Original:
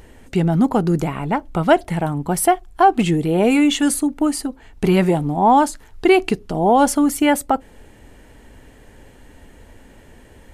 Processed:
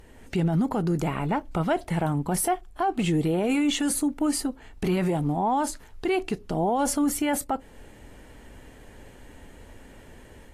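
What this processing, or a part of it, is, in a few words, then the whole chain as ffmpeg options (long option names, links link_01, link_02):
low-bitrate web radio: -af "dynaudnorm=framelen=120:gausssize=3:maxgain=4dB,alimiter=limit=-10.5dB:level=0:latency=1:release=32,volume=-6.5dB" -ar 32000 -c:a aac -b:a 48k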